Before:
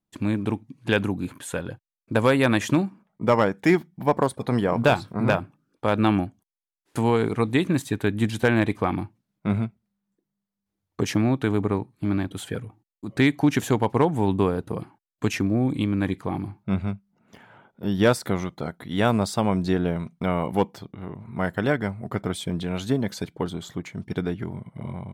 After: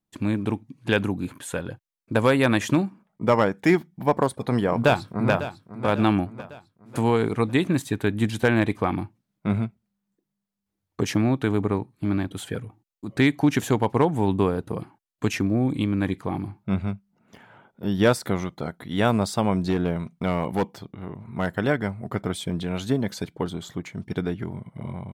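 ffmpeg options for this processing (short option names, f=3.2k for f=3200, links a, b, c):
-filter_complex "[0:a]asplit=2[a][b];[b]afade=t=in:st=4.76:d=0.01,afade=t=out:st=5.86:d=0.01,aecho=0:1:550|1100|1650|2200|2750:0.223872|0.111936|0.055968|0.027984|0.013992[c];[a][c]amix=inputs=2:normalize=0,asettb=1/sr,asplit=3[d][e][f];[d]atrim=end=19.704[g];[e]atrim=start=19.7:end=21.53,asetpts=PTS-STARTPTS,afade=t=in:d=0.004:c=qsin,afade=t=out:st=1.826:d=0.004:c=qsin,asoftclip=type=hard:threshold=-16.5dB[h];[f]atrim=start=21.526[i];[g][h]acrossfade=d=0.004:c1=hsin:c2=qsin[j];[j][i]acrossfade=d=0.004:c1=qsin:c2=hsin"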